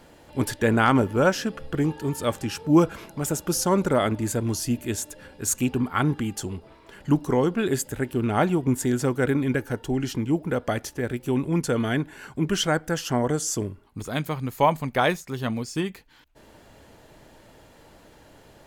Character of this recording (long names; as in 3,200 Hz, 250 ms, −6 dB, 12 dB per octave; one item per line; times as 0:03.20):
background noise floor −53 dBFS
spectral slope −5.0 dB per octave